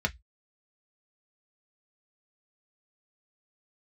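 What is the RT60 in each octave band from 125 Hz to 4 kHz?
0.25, 0.10, 0.10, 0.10, 0.15, 0.15 seconds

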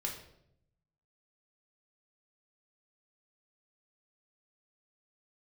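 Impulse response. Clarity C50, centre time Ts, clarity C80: 6.5 dB, 28 ms, 10.0 dB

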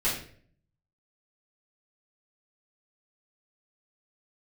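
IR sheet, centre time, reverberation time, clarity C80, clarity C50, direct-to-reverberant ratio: 37 ms, 0.50 s, 9.0 dB, 5.0 dB, −10.0 dB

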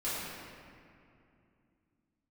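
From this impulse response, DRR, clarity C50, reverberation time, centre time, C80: −12.0 dB, −3.0 dB, 2.6 s, 151 ms, −1.0 dB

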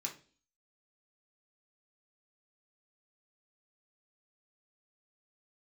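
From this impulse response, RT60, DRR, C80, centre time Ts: 0.40 s, −1.0 dB, 17.5 dB, 14 ms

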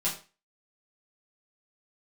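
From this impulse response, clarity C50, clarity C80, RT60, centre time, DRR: 9.0 dB, 14.0 dB, 0.35 s, 25 ms, −8.0 dB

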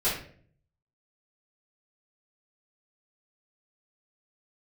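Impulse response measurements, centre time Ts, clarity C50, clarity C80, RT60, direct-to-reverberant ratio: 38 ms, 4.0 dB, 9.0 dB, 0.50 s, −12.0 dB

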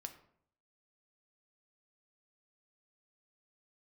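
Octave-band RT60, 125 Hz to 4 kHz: 0.80, 0.70, 0.70, 0.60, 0.50, 0.40 seconds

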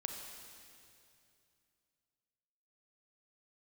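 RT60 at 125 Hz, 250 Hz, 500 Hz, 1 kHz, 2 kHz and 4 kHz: 3.2, 2.9, 2.7, 2.5, 2.5, 2.5 seconds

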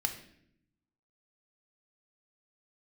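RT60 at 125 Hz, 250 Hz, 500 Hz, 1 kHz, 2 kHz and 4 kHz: 1.3, 1.1, 0.85, 0.60, 0.70, 0.60 seconds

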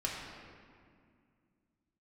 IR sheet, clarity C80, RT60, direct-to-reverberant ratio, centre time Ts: 2.5 dB, 2.2 s, −4.0 dB, 92 ms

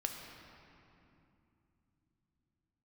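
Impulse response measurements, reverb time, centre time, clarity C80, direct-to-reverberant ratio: 2.8 s, 82 ms, 4.5 dB, 2.0 dB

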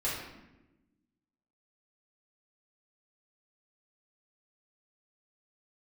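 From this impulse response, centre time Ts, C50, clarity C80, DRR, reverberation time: 60 ms, 1.5 dB, 4.5 dB, −8.0 dB, 1.0 s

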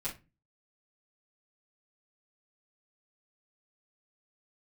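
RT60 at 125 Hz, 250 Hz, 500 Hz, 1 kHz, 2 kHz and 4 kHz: 0.50, 0.45, 0.30, 0.25, 0.25, 0.20 seconds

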